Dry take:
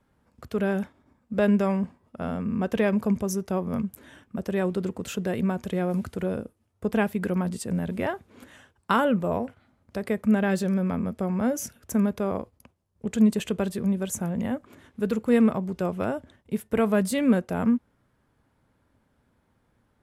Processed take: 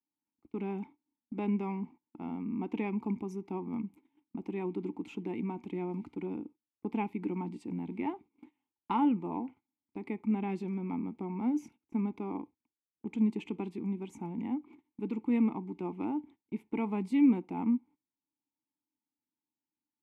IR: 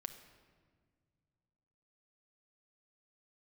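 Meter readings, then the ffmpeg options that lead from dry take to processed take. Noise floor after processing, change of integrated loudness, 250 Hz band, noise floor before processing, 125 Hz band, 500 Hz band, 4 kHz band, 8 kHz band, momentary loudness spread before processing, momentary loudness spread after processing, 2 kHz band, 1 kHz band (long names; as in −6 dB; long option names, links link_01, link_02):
below −85 dBFS, −8.0 dB, −7.0 dB, −70 dBFS, −11.0 dB, −13.5 dB, below −15 dB, below −25 dB, 12 LU, 13 LU, −15.5 dB, −7.0 dB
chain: -filter_complex "[0:a]asplit=3[link_01][link_02][link_03];[link_01]bandpass=frequency=300:width_type=q:width=8,volume=0dB[link_04];[link_02]bandpass=frequency=870:width_type=q:width=8,volume=-6dB[link_05];[link_03]bandpass=frequency=2240:width_type=q:width=8,volume=-9dB[link_06];[link_04][link_05][link_06]amix=inputs=3:normalize=0,agate=range=-23dB:threshold=-56dB:ratio=16:detection=peak,asplit=2[link_07][link_08];[1:a]atrim=start_sample=2205,atrim=end_sample=3528[link_09];[link_08][link_09]afir=irnorm=-1:irlink=0,volume=-10dB[link_10];[link_07][link_10]amix=inputs=2:normalize=0,volume=3.5dB"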